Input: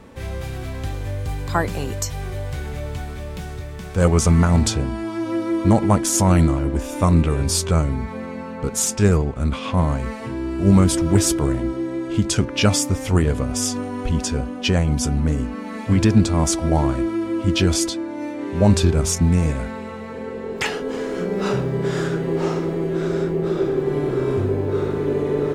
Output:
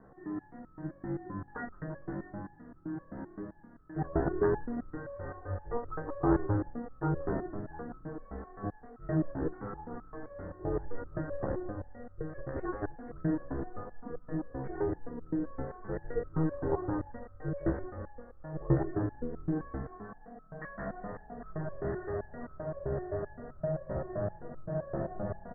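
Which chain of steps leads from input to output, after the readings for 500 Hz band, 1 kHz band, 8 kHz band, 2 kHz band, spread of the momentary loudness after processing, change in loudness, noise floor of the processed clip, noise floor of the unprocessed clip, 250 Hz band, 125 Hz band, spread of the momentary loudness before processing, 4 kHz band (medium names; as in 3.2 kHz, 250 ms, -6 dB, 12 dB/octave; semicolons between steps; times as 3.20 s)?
-13.0 dB, -13.5 dB, under -40 dB, -16.5 dB, 13 LU, -16.5 dB, -56 dBFS, -32 dBFS, -15.5 dB, -18.0 dB, 13 LU, under -40 dB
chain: ring modulator 240 Hz; Chebyshev low-pass 1.9 kHz, order 8; frequency-shifting echo 175 ms, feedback 47%, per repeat -43 Hz, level -7.5 dB; resonator arpeggio 7.7 Hz 67–1300 Hz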